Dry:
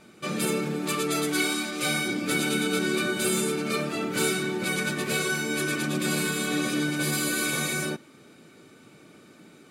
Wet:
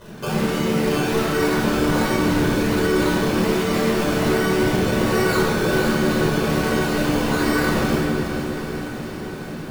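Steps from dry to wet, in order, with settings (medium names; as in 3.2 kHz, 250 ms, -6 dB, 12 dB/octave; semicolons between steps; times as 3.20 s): treble shelf 4.9 kHz -10 dB; hum notches 50/100/150 Hz; in parallel at -2 dB: compressor with a negative ratio -33 dBFS, ratio -1; on the sum: peak limiter -20.5 dBFS, peak gain reduction 7.5 dB; decimation with a swept rate 18×, swing 60% 1.3 Hz; on a send: echo that smears into a reverb 454 ms, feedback 67%, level -9 dB; on the sum: simulated room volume 2000 m³, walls mixed, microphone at 5 m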